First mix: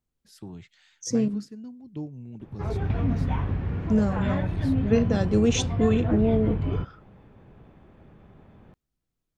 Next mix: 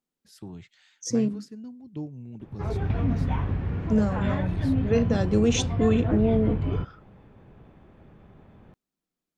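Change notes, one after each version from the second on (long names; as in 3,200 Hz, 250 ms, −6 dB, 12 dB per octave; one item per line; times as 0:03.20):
second voice: add Butterworth high-pass 170 Hz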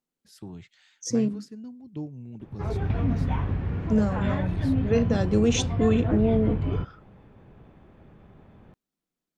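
nothing changed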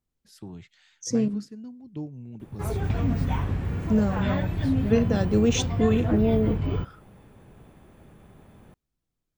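second voice: remove Butterworth high-pass 170 Hz
background: remove high-frequency loss of the air 200 metres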